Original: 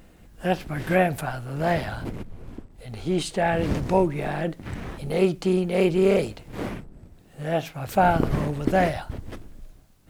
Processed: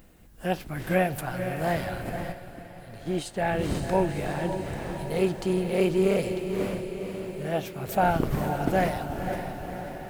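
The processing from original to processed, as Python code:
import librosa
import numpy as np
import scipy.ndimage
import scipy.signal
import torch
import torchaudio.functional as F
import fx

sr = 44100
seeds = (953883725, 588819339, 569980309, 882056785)

p1 = fx.high_shelf(x, sr, hz=11000.0, db=10.5)
p2 = p1 + fx.echo_diffused(p1, sr, ms=514, feedback_pct=62, wet_db=-7.5, dry=0)
p3 = fx.upward_expand(p2, sr, threshold_db=-34.0, expansion=1.5, at=(2.32, 3.47))
y = p3 * librosa.db_to_amplitude(-4.0)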